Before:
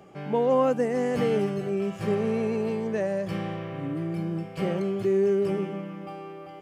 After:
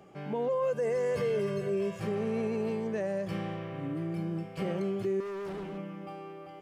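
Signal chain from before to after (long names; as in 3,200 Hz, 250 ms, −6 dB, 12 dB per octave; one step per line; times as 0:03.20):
0:00.48–0:02.00: comb filter 1.9 ms, depth 94%
brickwall limiter −19.5 dBFS, peak gain reduction 11 dB
0:05.20–0:05.78: hard clipping −32 dBFS, distortion −13 dB
level −4 dB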